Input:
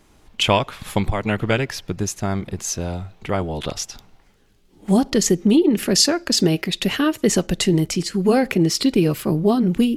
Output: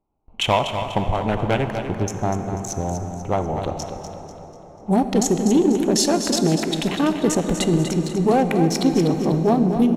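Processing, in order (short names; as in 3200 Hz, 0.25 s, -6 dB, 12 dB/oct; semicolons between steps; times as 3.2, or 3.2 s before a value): Wiener smoothing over 25 samples; gate with hold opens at -42 dBFS; bell 810 Hz +9.5 dB 0.69 oct; notch 4800 Hz, Q 5.8; in parallel at -3 dB: limiter -12 dBFS, peak gain reduction 11.5 dB; on the sum: hard clip -5 dBFS, distortion -23 dB; on a send: feedback echo 0.245 s, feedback 42%, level -8.5 dB; on the sum: plate-style reverb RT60 4.9 s, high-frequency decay 0.5×, DRR 8 dB; gain -5.5 dB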